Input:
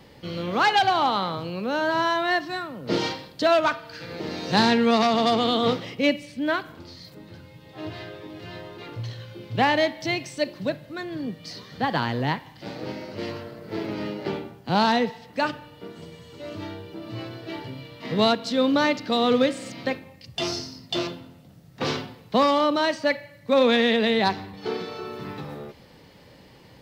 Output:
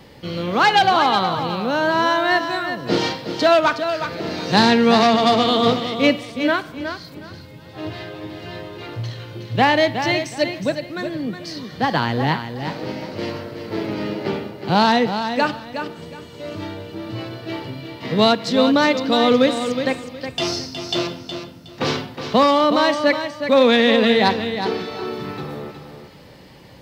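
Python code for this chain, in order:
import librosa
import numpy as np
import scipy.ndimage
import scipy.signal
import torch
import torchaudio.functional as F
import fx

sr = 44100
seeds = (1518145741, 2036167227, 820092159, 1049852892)

y = fx.echo_feedback(x, sr, ms=366, feedback_pct=23, wet_db=-8.5)
y = y * 10.0 ** (5.0 / 20.0)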